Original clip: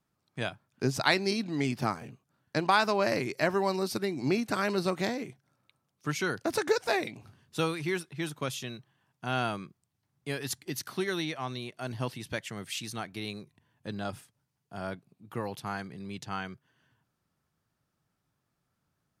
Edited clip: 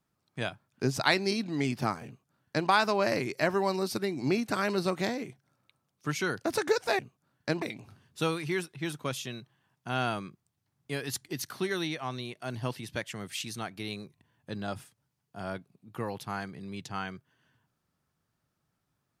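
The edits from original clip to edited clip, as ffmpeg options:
-filter_complex "[0:a]asplit=3[s0][s1][s2];[s0]atrim=end=6.992[s3];[s1]atrim=start=2.058:end=2.692[s4];[s2]atrim=start=6.988[s5];[s3][s4]acrossfade=d=0.004:c1=hsin:c2=hsin[s6];[s6][s5]acrossfade=d=0.004:c1=hsin:c2=hsin"

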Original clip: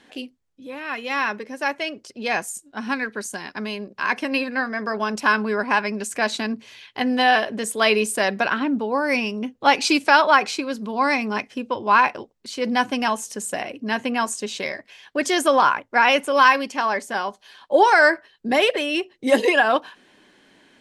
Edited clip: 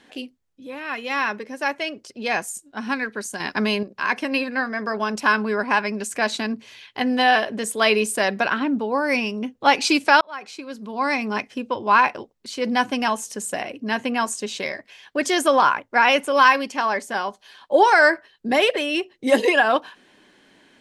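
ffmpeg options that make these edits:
-filter_complex "[0:a]asplit=4[s0][s1][s2][s3];[s0]atrim=end=3.402[s4];[s1]atrim=start=3.398:end=3.832,asetpts=PTS-STARTPTS,volume=2.37[s5];[s2]atrim=start=3.828:end=10.21,asetpts=PTS-STARTPTS,afade=t=out:st=6.378:d=0.004:c=hsin[s6];[s3]atrim=start=10.21,asetpts=PTS-STARTPTS,afade=t=in:d=1.13[s7];[s4][s5]acrossfade=d=0.004:c1=hsin:c2=hsin[s8];[s6][s7]concat=n=2:v=0:a=1[s9];[s8][s9]acrossfade=d=0.004:c1=hsin:c2=hsin"

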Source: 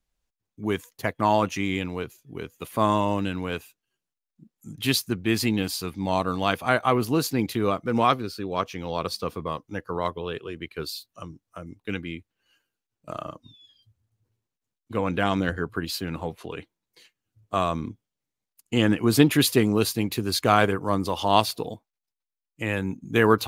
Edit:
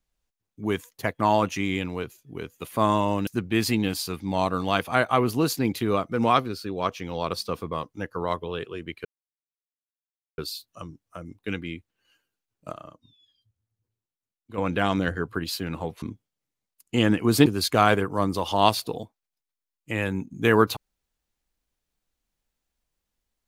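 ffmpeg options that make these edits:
-filter_complex "[0:a]asplit=7[s0][s1][s2][s3][s4][s5][s6];[s0]atrim=end=3.272[s7];[s1]atrim=start=5.008:end=10.79,asetpts=PTS-STARTPTS,afade=t=out:st=5.778:d=0.004:c=hsin,apad=pad_dur=1.33[s8];[s2]atrim=start=10.79:end=13.142,asetpts=PTS-STARTPTS,afade=t=in:d=0.004:c=hsin[s9];[s3]atrim=start=13.138:end=14.992,asetpts=PTS-STARTPTS,volume=0.376[s10];[s4]atrim=start=14.988:end=16.432[s11];[s5]atrim=start=17.808:end=19.252[s12];[s6]atrim=start=20.168[s13];[s8][s9]concat=n=2:v=0:a=1[s14];[s7][s14]acrossfade=d=0.004:c1=hsin:c2=hsin[s15];[s15][s10]acrossfade=d=0.004:c1=hsin:c2=hsin[s16];[s16][s11]acrossfade=d=0.004:c1=hsin:c2=hsin[s17];[s17][s12]acrossfade=d=0.004:c1=hsin:c2=hsin[s18];[s18][s13]acrossfade=d=0.004:c1=hsin:c2=hsin"

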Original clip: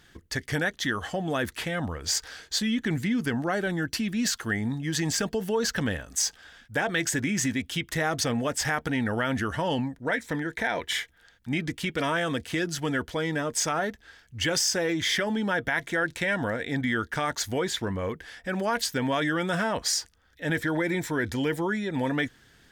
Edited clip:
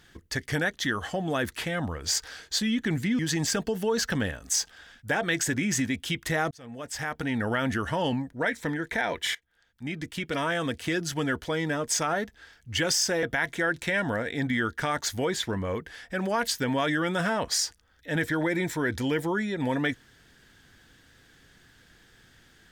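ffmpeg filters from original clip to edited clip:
-filter_complex "[0:a]asplit=5[s0][s1][s2][s3][s4];[s0]atrim=end=3.192[s5];[s1]atrim=start=4.848:end=8.17,asetpts=PTS-STARTPTS,afade=t=out:st=3.318:d=0.004:c=hsin[s6];[s2]atrim=start=8.17:end=11.01,asetpts=PTS-STARTPTS,afade=t=in:d=0.98,afade=t=out:st=2.836:d=0.004:c=hsin:silence=0.11885[s7];[s3]atrim=start=11.01:end=14.892,asetpts=PTS-STARTPTS,afade=t=in:d=1.76:c=qsin:silence=0.11885[s8];[s4]atrim=start=15.568[s9];[s6][s7][s8]concat=n=3:v=0:a=1[s10];[s5][s10]acrossfade=d=0.004:c1=hsin:c2=hsin[s11];[s11][s9]acrossfade=d=0.004:c1=hsin:c2=hsin"

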